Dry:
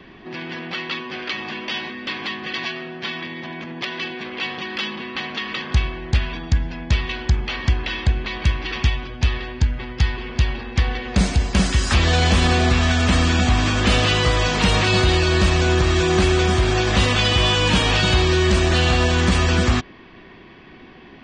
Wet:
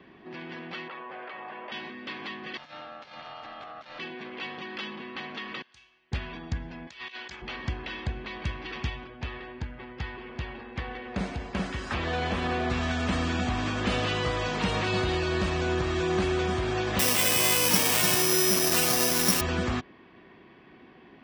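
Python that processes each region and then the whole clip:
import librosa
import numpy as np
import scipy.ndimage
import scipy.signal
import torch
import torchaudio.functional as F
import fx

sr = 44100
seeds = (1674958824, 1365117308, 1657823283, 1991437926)

y = fx.chain(x, sr, fx.bessel_lowpass(hz=1300.0, order=2),
    fx.low_shelf_res(hz=400.0, db=-11.5, q=1.5),
    fx.env_flatten(amount_pct=70), at=(0.88, 1.72))
y = fx.chain(y, sr, fx.over_compress(threshold_db=-31.0, ratio=-0.5),
    fx.ring_mod(carrier_hz=970.0), at=(2.57, 3.99))
y = fx.chain(y, sr, fx.pre_emphasis(coefficient=0.97),
    fx.comb_fb(f0_hz=120.0, decay_s=0.49, harmonics='all', damping=0.0, mix_pct=70), at=(5.62, 6.12))
y = fx.chain(y, sr, fx.highpass(hz=1300.0, slope=6),
    fx.high_shelf(hz=2200.0, db=6.5),
    fx.over_compress(threshold_db=-30.0, ratio=-0.5), at=(6.87, 7.42))
y = fx.chain(y, sr, fx.bass_treble(bass_db=-4, treble_db=-9),
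    fx.quant_float(bits=8), at=(9.04, 12.7))
y = fx.chain(y, sr, fx.highpass(hz=120.0, slope=24),
    fx.notch(hz=1400.0, q=14.0),
    fx.resample_bad(factor=8, down='none', up='zero_stuff'), at=(16.99, 19.41))
y = fx.highpass(y, sr, hz=150.0, slope=6)
y = fx.high_shelf(y, sr, hz=2700.0, db=-8.5)
y = F.gain(torch.from_numpy(y), -7.0).numpy()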